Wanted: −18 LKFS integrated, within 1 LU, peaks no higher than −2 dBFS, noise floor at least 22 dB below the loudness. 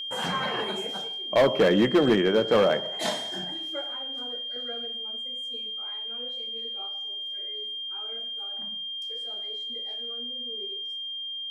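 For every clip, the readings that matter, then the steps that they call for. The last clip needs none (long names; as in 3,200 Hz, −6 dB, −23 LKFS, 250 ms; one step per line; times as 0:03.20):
share of clipped samples 0.6%; peaks flattened at −14.5 dBFS; interfering tone 3,200 Hz; level of the tone −32 dBFS; integrated loudness −27.5 LKFS; sample peak −14.5 dBFS; target loudness −18.0 LKFS
→ clipped peaks rebuilt −14.5 dBFS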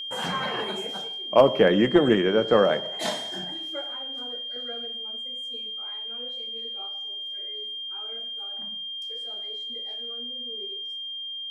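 share of clipped samples 0.0%; interfering tone 3,200 Hz; level of the tone −32 dBFS
→ notch filter 3,200 Hz, Q 30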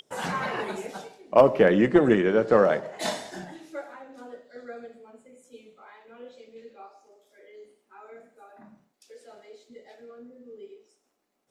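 interfering tone none found; integrated loudness −22.5 LKFS; sample peak −5.0 dBFS; target loudness −18.0 LKFS
→ level +4.5 dB
brickwall limiter −2 dBFS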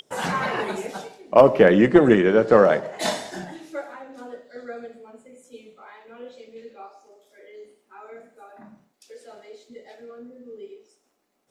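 integrated loudness −18.5 LKFS; sample peak −2.0 dBFS; background noise floor −69 dBFS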